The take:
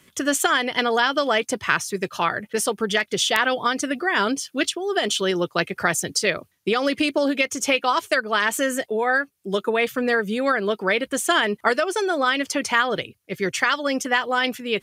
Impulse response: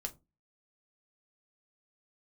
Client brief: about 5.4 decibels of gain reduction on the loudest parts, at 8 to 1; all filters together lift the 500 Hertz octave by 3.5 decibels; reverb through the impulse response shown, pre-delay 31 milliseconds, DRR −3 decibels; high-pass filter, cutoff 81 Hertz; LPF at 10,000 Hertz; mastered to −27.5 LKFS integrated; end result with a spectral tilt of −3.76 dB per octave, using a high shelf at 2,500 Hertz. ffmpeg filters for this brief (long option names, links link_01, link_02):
-filter_complex "[0:a]highpass=81,lowpass=10000,equalizer=frequency=500:width_type=o:gain=4.5,highshelf=frequency=2500:gain=-6.5,acompressor=threshold=-20dB:ratio=8,asplit=2[link_01][link_02];[1:a]atrim=start_sample=2205,adelay=31[link_03];[link_02][link_03]afir=irnorm=-1:irlink=0,volume=4dB[link_04];[link_01][link_04]amix=inputs=2:normalize=0,volume=-6.5dB"